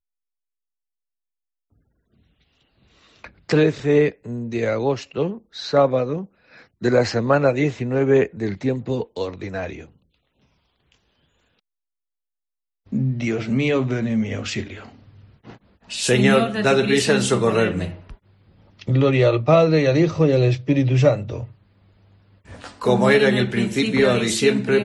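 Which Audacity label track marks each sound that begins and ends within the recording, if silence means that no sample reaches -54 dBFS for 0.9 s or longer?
1.720000	11.590000	sound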